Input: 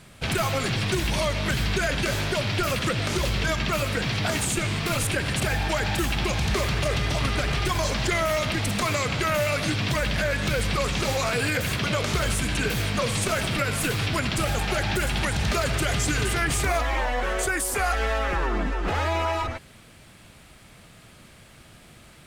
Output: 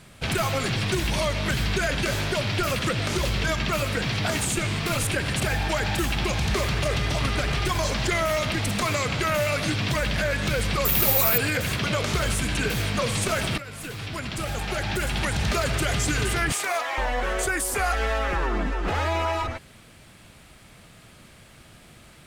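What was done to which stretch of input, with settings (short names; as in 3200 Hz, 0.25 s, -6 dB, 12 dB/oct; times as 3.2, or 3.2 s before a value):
10.85–11.38 careless resampling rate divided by 3×, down none, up zero stuff
13.58–15.36 fade in, from -14.5 dB
16.52–16.98 HPF 560 Hz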